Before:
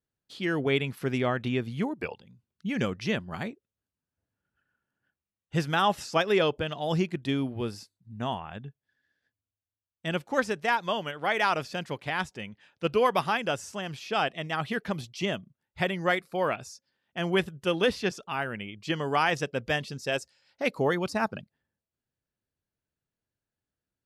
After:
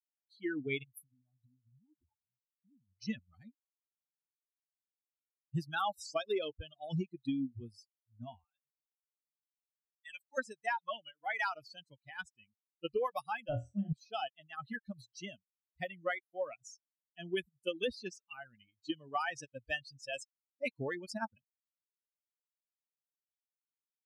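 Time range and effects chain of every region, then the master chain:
0.83–2.99 band shelf 2800 Hz -13 dB 2.8 oct + comb 1 ms, depth 86% + compressor 20:1, threshold -38 dBFS
8.44–10.38 HPF 1200 Hz 6 dB/oct + notch 2900 Hz, Q 15 + comb 6.7 ms, depth 67%
13.49–13.93 expander -41 dBFS + RIAA curve playback + flutter echo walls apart 4.3 m, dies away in 0.57 s
whole clip: per-bin expansion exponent 3; compressor 6:1, threshold -32 dBFS; gain +1 dB

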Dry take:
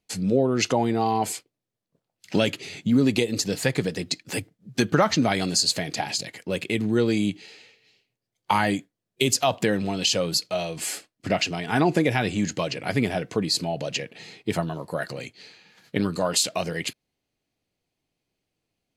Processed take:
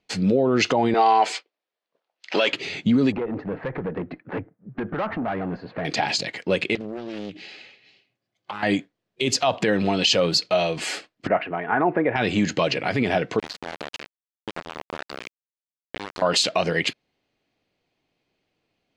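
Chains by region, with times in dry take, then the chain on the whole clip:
0.94–2.53 sample leveller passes 1 + BPF 560–6400 Hz
3.12–5.85 LPF 1600 Hz 24 dB/oct + compressor 5:1, threshold -24 dBFS + tube stage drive 28 dB, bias 0.3
6.75–8.63 compressor 12:1, threshold -33 dBFS + notch comb 460 Hz + Doppler distortion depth 0.82 ms
11.27–12.16 LPF 1700 Hz 24 dB/oct + low shelf 320 Hz -11.5 dB
13.39–16.22 low shelf 190 Hz -7 dB + compressor 12:1, threshold -32 dBFS + sample gate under -31 dBFS
whole clip: LPF 3900 Hz 12 dB/oct; limiter -17 dBFS; low shelf 180 Hz -9 dB; gain +8.5 dB

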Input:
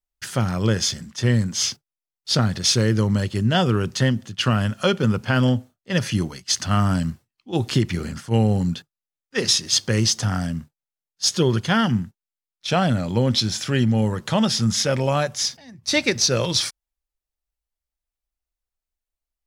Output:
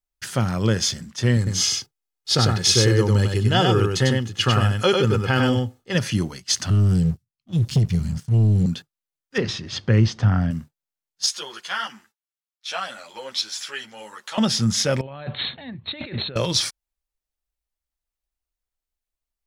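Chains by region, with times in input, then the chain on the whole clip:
1.37–5.95 comb 2.4 ms, depth 50% + echo 98 ms -3.5 dB
6.7–8.66 EQ curve 170 Hz 0 dB, 440 Hz -30 dB, 5200 Hz -10 dB + sample leveller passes 2
9.38–10.51 LPF 2500 Hz + low shelf 120 Hz +10.5 dB
11.26–14.38 HPF 960 Hz + ensemble effect
15.01–16.36 brick-wall FIR low-pass 4300 Hz + negative-ratio compressor -32 dBFS
whole clip: dry

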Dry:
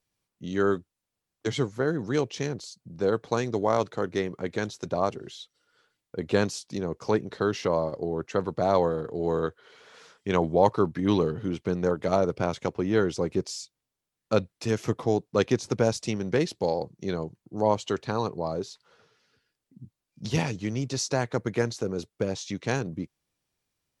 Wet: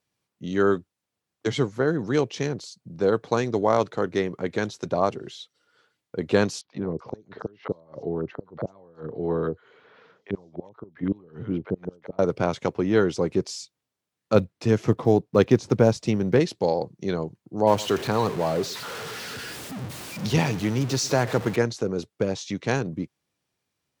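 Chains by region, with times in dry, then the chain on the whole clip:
6.61–12.19 flipped gate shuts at -15 dBFS, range -29 dB + tape spacing loss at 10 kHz 28 dB + three bands offset in time mids, lows, highs 40/380 ms, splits 700/5600 Hz
14.35–16.4 block floating point 7-bit + tilt -1.5 dB/oct
17.67–21.56 zero-crossing step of -32 dBFS + echo 0.115 s -19.5 dB
whole clip: HPF 89 Hz; high shelf 6100 Hz -5.5 dB; gain +3.5 dB

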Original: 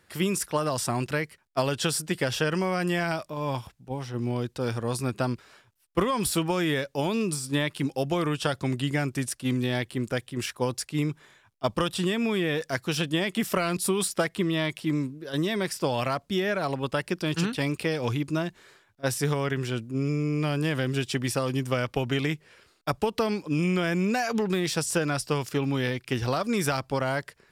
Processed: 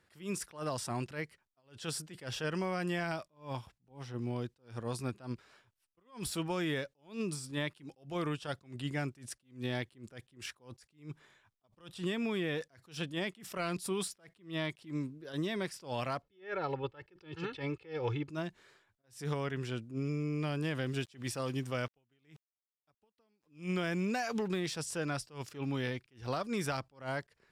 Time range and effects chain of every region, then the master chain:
16.22–18.29 LPF 3200 Hz + comb 2.3 ms, depth 77%
20.86–24.48 high shelf 4100 Hz +2.5 dB + sample gate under -45.5 dBFS
whole clip: high shelf 12000 Hz -11.5 dB; attack slew limiter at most 180 dB/s; gain -8 dB

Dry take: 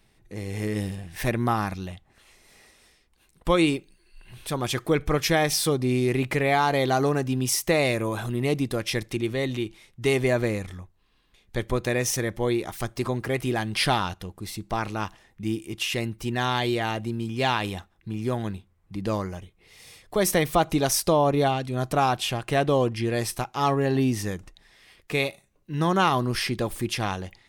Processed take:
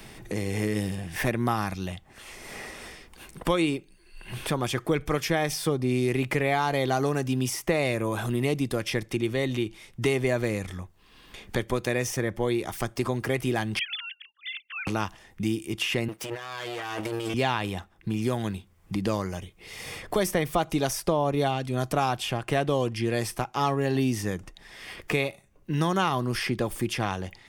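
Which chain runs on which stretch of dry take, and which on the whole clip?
13.79–14.87 sine-wave speech + inverse Chebyshev high-pass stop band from 750 Hz, stop band 60 dB
16.08–17.34 minimum comb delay 6.3 ms + HPF 750 Hz 6 dB/oct + negative-ratio compressor -41 dBFS
whole clip: notch 4000 Hz, Q 14; three-band squash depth 70%; gain -2 dB

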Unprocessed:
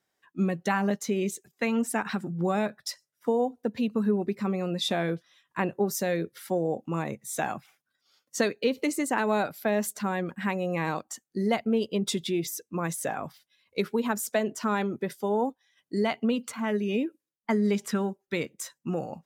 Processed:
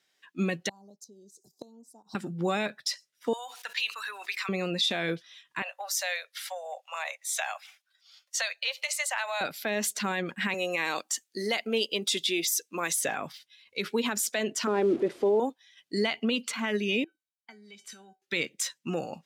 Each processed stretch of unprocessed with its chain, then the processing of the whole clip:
0.69–2.15 Chebyshev band-stop 890–4800 Hz, order 3 + flipped gate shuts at -25 dBFS, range -25 dB
3.33–4.49 HPF 1100 Hz 24 dB/oct + fast leveller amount 70%
5.62–9.41 steep high-pass 580 Hz 72 dB/oct + compressor 2.5:1, threshold -32 dBFS
10.54–13.01 HPF 300 Hz + high shelf 5400 Hz +8.5 dB
14.67–15.4 delta modulation 64 kbps, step -39 dBFS + EQ curve 190 Hz 0 dB, 330 Hz +14 dB, 490 Hz +9 dB, 1900 Hz -9 dB, 5400 Hz -18 dB
17.04–18.22 compressor, threshold -31 dBFS + resonator 760 Hz, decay 0.19 s, mix 90%
whole clip: weighting filter D; limiter -17.5 dBFS

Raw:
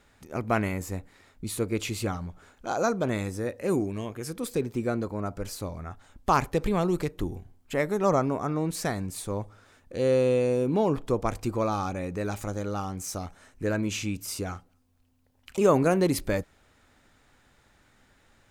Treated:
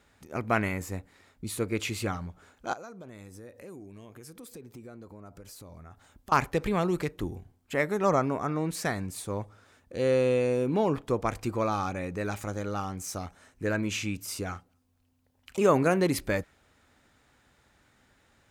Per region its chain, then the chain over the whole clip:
2.73–6.32 high shelf 11000 Hz +6.5 dB + compressor 4:1, threshold -43 dBFS
whole clip: HPF 40 Hz; dynamic EQ 1900 Hz, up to +5 dB, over -45 dBFS, Q 0.95; gain -2 dB

